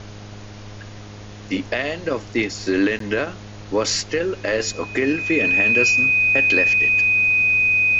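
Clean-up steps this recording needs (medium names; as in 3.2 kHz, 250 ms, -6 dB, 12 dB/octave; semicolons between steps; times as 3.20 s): de-hum 103.5 Hz, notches 7; band-stop 2.5 kHz, Q 30; interpolate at 2.99 s, 13 ms; noise reduction 29 dB, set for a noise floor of -37 dBFS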